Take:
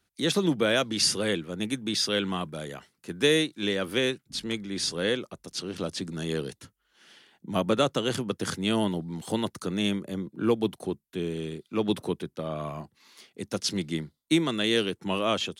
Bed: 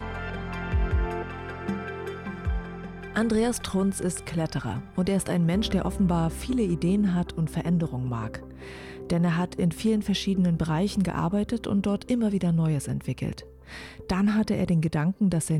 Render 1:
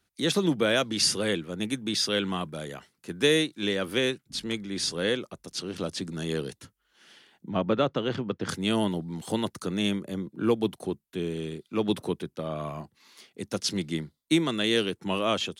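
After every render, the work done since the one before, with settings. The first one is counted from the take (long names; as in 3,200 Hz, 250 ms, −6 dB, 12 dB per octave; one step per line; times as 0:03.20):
0:07.49–0:08.49: high-frequency loss of the air 230 metres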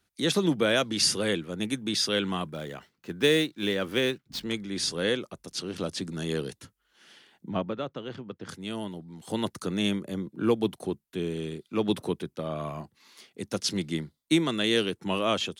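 0:02.53–0:04.45: running median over 5 samples
0:07.51–0:09.43: duck −9 dB, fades 0.22 s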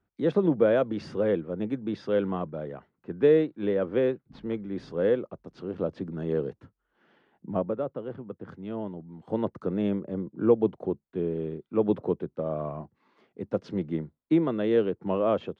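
low-pass filter 1,100 Hz 12 dB per octave
dynamic equaliser 510 Hz, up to +6 dB, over −42 dBFS, Q 2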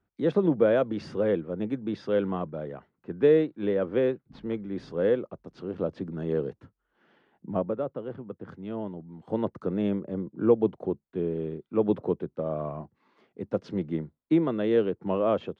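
no processing that can be heard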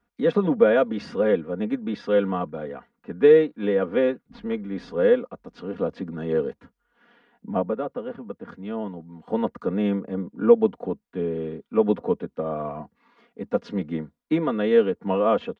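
parametric band 1,700 Hz +5 dB 2.6 octaves
comb filter 4.2 ms, depth 82%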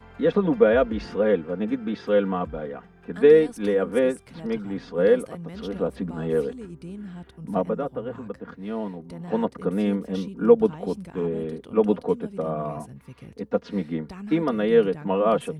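mix in bed −14 dB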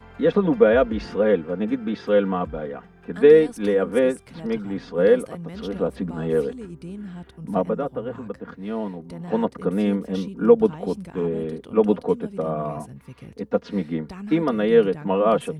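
level +2 dB
brickwall limiter −3 dBFS, peak gain reduction 1.5 dB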